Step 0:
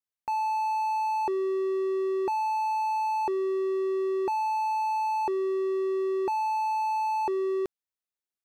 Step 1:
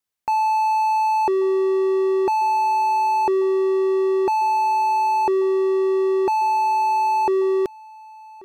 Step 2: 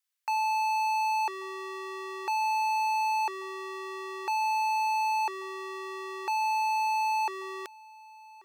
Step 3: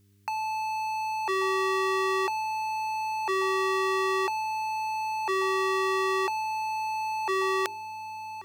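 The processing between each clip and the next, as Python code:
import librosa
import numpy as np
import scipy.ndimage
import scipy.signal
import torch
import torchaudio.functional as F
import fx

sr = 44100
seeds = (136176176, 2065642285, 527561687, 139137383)

y1 = x + 10.0 ** (-23.0 / 20.0) * np.pad(x, (int(1136 * sr / 1000.0), 0))[:len(x)]
y1 = F.gain(torch.from_numpy(y1), 8.5).numpy()
y2 = scipy.signal.sosfilt(scipy.signal.butter(2, 1400.0, 'highpass', fs=sr, output='sos'), y1)
y3 = fx.hum_notches(y2, sr, base_hz=50, count=8)
y3 = fx.over_compress(y3, sr, threshold_db=-35.0, ratio=-1.0)
y3 = fx.dmg_buzz(y3, sr, base_hz=100.0, harmonics=4, level_db=-69.0, tilt_db=-7, odd_only=False)
y3 = F.gain(torch.from_numpy(y3), 7.0).numpy()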